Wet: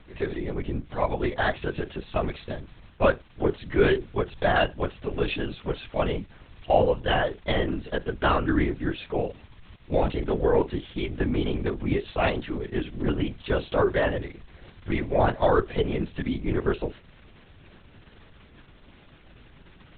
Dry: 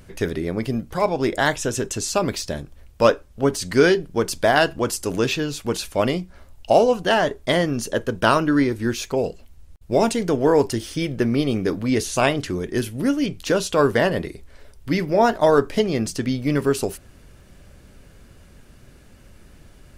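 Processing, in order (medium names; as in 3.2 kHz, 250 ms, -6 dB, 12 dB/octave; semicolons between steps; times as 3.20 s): crackle 460 per s -35 dBFS; LPC vocoder at 8 kHz whisper; trim -5 dB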